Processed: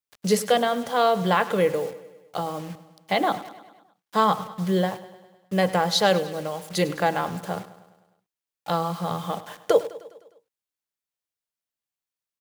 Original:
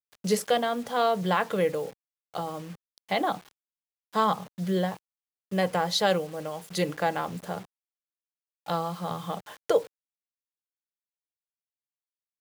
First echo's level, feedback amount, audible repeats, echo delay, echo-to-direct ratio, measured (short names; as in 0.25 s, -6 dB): -16.0 dB, 58%, 5, 0.102 s, -14.0 dB